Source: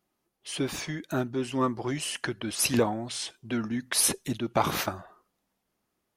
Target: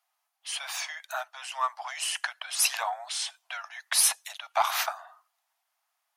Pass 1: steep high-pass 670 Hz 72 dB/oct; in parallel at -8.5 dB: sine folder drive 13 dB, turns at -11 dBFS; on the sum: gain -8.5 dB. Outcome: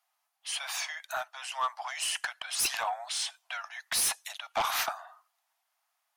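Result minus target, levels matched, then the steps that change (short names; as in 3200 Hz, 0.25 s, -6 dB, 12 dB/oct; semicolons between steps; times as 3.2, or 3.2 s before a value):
sine folder: distortion +20 dB
change: sine folder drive 13 dB, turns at 0 dBFS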